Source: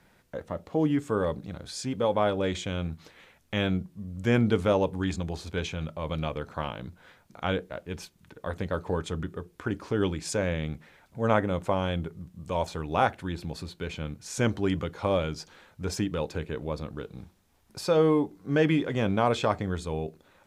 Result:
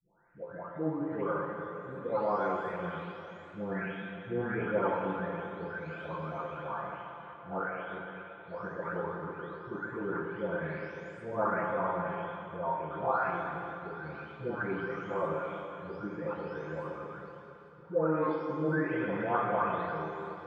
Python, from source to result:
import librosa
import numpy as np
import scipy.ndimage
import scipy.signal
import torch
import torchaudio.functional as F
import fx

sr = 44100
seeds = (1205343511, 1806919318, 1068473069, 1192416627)

y = fx.spec_delay(x, sr, highs='late', ms=902)
y = fx.lowpass_res(y, sr, hz=1400.0, q=1.9)
y = fx.low_shelf(y, sr, hz=200.0, db=-10.5)
y = fx.rev_plate(y, sr, seeds[0], rt60_s=3.1, hf_ratio=0.95, predelay_ms=0, drr_db=-0.5)
y = F.gain(torch.from_numpy(y), -5.0).numpy()